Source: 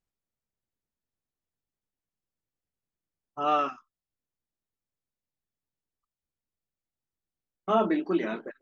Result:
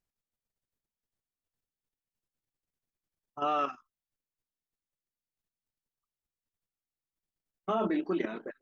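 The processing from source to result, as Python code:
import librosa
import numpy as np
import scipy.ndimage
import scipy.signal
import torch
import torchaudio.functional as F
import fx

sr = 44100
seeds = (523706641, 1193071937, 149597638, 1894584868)

y = fx.level_steps(x, sr, step_db=10)
y = F.gain(torch.from_numpy(y), 1.5).numpy()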